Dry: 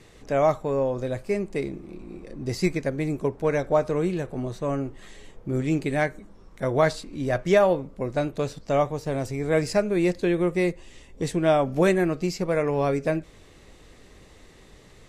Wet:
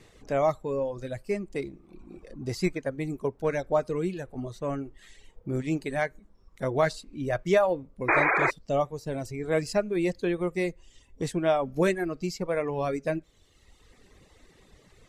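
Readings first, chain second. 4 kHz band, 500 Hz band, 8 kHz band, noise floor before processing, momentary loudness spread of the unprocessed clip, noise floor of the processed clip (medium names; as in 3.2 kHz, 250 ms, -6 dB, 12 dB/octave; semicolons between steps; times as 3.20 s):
-3.5 dB, -4.0 dB, -3.5 dB, -51 dBFS, 10 LU, -60 dBFS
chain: painted sound noise, 8.08–8.51 s, 310–2500 Hz -18 dBFS; reverb removal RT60 1.3 s; trim -3 dB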